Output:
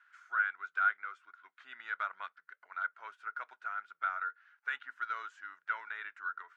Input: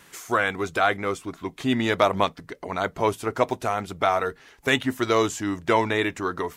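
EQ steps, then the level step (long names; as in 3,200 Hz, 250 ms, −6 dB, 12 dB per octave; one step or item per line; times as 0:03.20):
four-pole ladder band-pass 1,500 Hz, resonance 85%
−7.5 dB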